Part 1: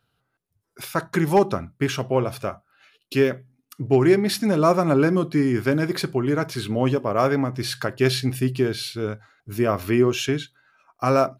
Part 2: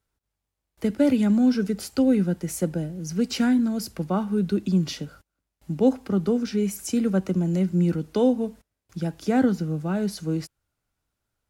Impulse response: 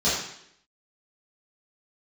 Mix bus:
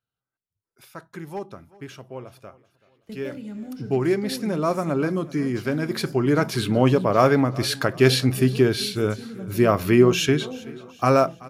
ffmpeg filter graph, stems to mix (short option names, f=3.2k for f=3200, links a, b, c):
-filter_complex "[0:a]dynaudnorm=f=110:g=7:m=4dB,afade=t=in:st=3.17:d=0.34:silence=0.298538,afade=t=in:st=5.78:d=0.73:silence=0.398107,asplit=2[a][b];[b]volume=-21dB[c];[1:a]agate=range=-8dB:threshold=-38dB:ratio=16:detection=peak,adelay=2250,volume=-15.5dB,asplit=3[d][e][f];[e]volume=-22.5dB[g];[f]volume=-15.5dB[h];[2:a]atrim=start_sample=2205[i];[g][i]afir=irnorm=-1:irlink=0[j];[c][h]amix=inputs=2:normalize=0,aecho=0:1:380|760|1140|1520|1900|2280:1|0.45|0.202|0.0911|0.041|0.0185[k];[a][d][j][k]amix=inputs=4:normalize=0"